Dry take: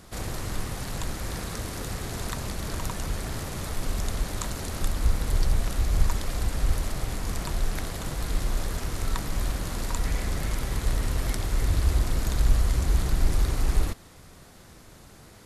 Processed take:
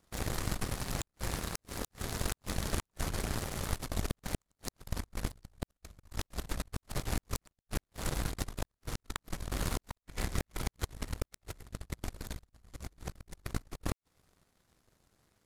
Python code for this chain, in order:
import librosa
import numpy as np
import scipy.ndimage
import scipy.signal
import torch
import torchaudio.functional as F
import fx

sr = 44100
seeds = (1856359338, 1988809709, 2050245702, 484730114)

y = fx.over_compress(x, sr, threshold_db=-28.0, ratio=-0.5)
y = fx.gate_flip(y, sr, shuts_db=-16.0, range_db=-27)
y = fx.power_curve(y, sr, exponent=2.0)
y = F.gain(torch.from_numpy(y), 2.5).numpy()